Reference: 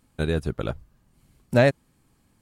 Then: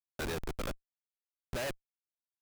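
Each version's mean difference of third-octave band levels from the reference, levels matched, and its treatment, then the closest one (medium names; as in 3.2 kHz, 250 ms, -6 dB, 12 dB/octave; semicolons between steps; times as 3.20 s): 10.5 dB: band-pass filter 2.9 kHz, Q 0.56; Schmitt trigger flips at -38 dBFS; trim +1 dB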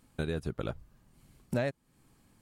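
3.5 dB: peaking EQ 68 Hz -3.5 dB 0.77 oct; compression 3:1, threshold -32 dBFS, peak gain reduction 14.5 dB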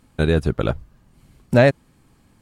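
1.5 dB: treble shelf 6.5 kHz -6.5 dB; in parallel at +1 dB: peak limiter -16 dBFS, peak gain reduction 10.5 dB; on the sum: trim +1.5 dB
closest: third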